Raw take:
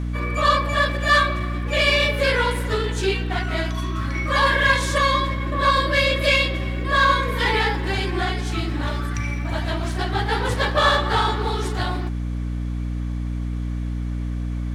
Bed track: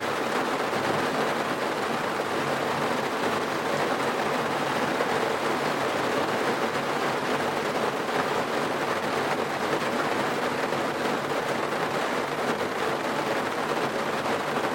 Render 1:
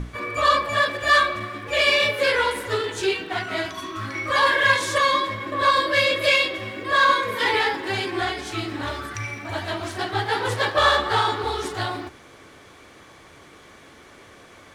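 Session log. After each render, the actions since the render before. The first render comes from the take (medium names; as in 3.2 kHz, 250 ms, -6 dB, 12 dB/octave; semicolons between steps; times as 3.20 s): hum notches 60/120/180/240/300 Hz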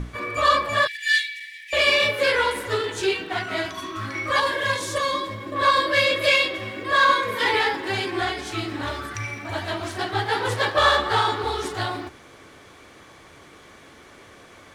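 0.87–1.73 s: brick-wall FIR high-pass 1.7 kHz; 4.40–5.56 s: peaking EQ 1.8 kHz -7.5 dB 2.3 oct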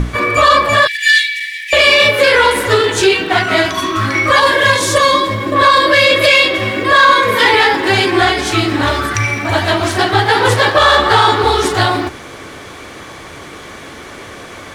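in parallel at -2.5 dB: compression, threshold -28 dBFS, peak gain reduction 14 dB; on the sum: loudness maximiser +11 dB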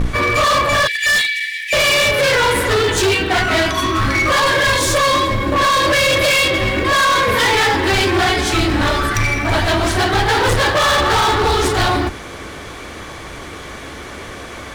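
octave divider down 2 oct, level -1 dB; hard clipper -12 dBFS, distortion -8 dB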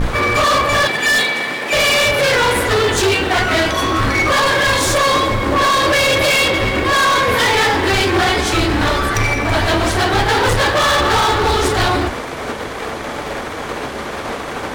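add bed track +1.5 dB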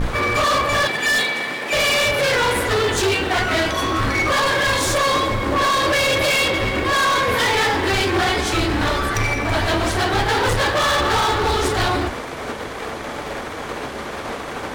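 trim -4 dB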